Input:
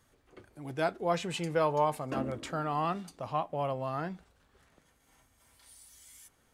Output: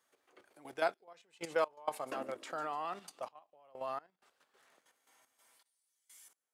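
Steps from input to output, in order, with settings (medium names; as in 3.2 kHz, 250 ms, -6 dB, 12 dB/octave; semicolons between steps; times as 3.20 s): high-pass 470 Hz 12 dB/octave; feedback echo behind a high-pass 147 ms, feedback 49%, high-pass 4.1 kHz, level -13 dB; level held to a coarse grid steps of 10 dB; trance gate "xxxx..x.xx" 64 bpm -24 dB; trim +1.5 dB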